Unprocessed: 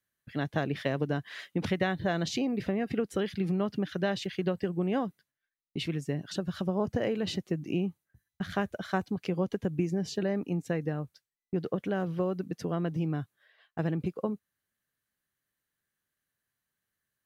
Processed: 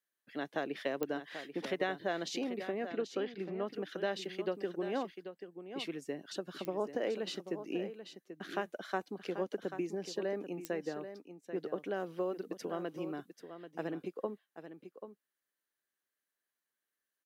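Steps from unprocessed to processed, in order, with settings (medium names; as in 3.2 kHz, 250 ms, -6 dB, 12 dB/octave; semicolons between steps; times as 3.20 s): 11.96–13.88 s: treble shelf 5.6 kHz +5 dB; ladder high-pass 240 Hz, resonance 20%; 2.87–3.67 s: distance through air 170 m; delay 787 ms -10.5 dB; clicks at 1.03/6.65/10.65 s, -21 dBFS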